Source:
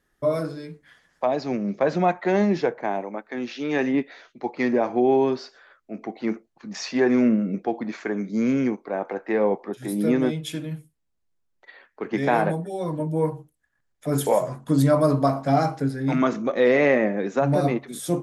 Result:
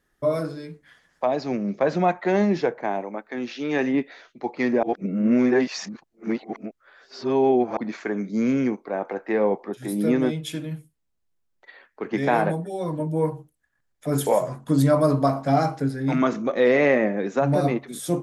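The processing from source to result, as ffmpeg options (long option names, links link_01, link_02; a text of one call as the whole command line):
ffmpeg -i in.wav -filter_complex "[0:a]asplit=3[link_01][link_02][link_03];[link_01]atrim=end=4.832[link_04];[link_02]atrim=start=4.828:end=7.772,asetpts=PTS-STARTPTS,areverse[link_05];[link_03]atrim=start=7.768[link_06];[link_04][link_05]acrossfade=duration=0.004:curve1=hsin:curve2=hsin[link_07];[link_07][link_06]acrossfade=duration=0.004:curve1=hsin:curve2=hsin" out.wav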